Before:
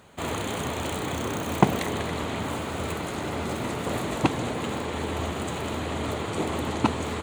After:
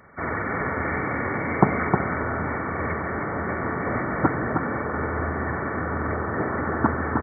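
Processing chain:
hearing-aid frequency compression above 1,100 Hz 4 to 1
single-tap delay 311 ms −4.5 dB
level +1 dB

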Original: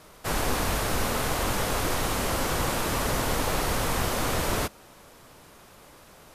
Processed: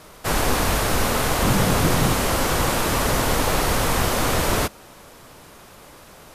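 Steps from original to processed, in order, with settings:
0:01.42–0:02.14: parametric band 160 Hz +11 dB 1.2 octaves
level +6 dB

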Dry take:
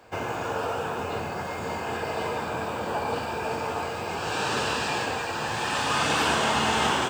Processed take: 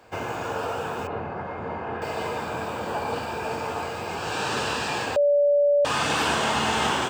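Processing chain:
0:01.07–0:02.02: low-pass filter 1,700 Hz 12 dB per octave
0:05.16–0:05.85: beep over 577 Hz −16 dBFS

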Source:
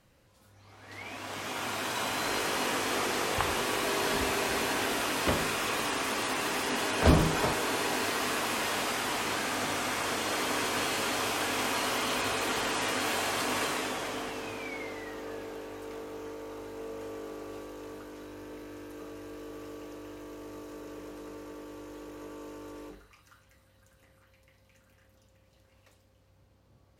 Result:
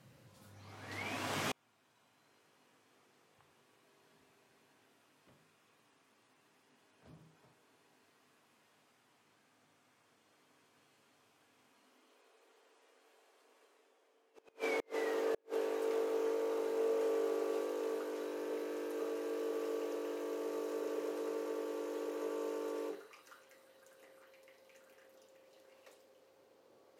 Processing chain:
high-pass filter sweep 130 Hz → 420 Hz, 0:11.63–0:12.20
gate with flip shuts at −25 dBFS, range −40 dB

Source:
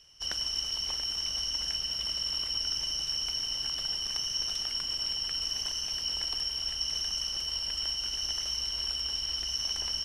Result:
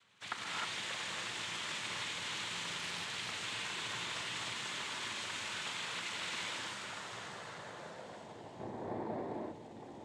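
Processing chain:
0:08.58–0:09.21: compressing power law on the bin magnitudes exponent 0.3
low-pass filter sweep 1,800 Hz → 460 Hz, 0:06.34–0:08.64
cochlear-implant simulation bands 6
reverb whose tail is shaped and stops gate 330 ms rising, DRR −3.5 dB
0:02.77–0:03.41: highs frequency-modulated by the lows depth 0.34 ms
level −2 dB

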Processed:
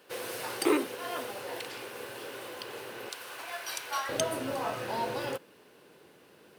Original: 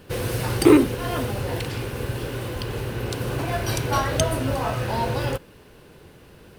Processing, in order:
high-pass filter 470 Hz 12 dB per octave, from 0:03.09 1,000 Hz, from 0:04.09 260 Hz
level −6.5 dB

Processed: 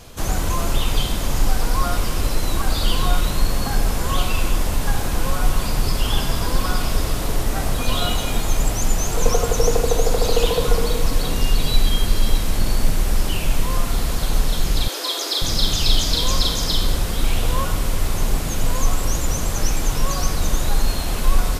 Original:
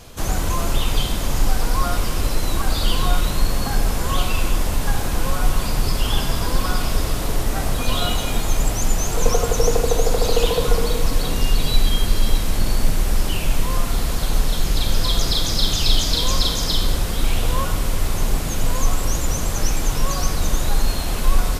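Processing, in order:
0:14.88–0:15.42: Butterworth high-pass 290 Hz 72 dB per octave

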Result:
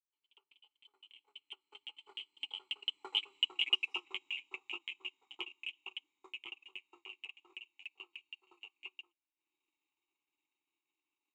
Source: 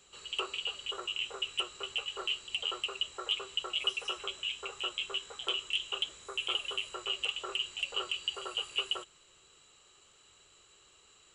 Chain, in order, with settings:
fade in at the beginning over 3.28 s
source passing by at 0:03.47, 16 m/s, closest 8.6 metres
formant filter u
spectral tilt +2 dB per octave
transient designer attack +10 dB, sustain −11 dB
level +9 dB

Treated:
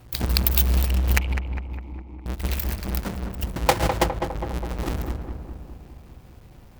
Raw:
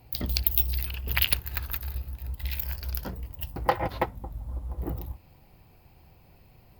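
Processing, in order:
each half-wave held at its own peak
0:01.18–0:02.26: formant filter u
feedback echo with a low-pass in the loop 204 ms, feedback 65%, low-pass 1,600 Hz, level −5.5 dB
level +1 dB

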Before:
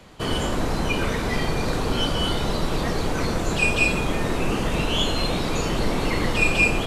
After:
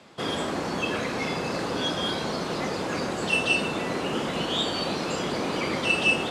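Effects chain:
band-pass filter 160–7,300 Hz
wrong playback speed 44.1 kHz file played as 48 kHz
level −2.5 dB

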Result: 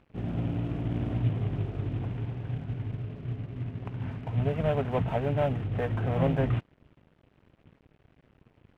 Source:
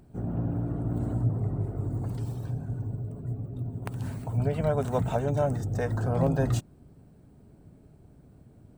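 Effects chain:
variable-slope delta modulation 16 kbit/s
dead-zone distortion −54.5 dBFS

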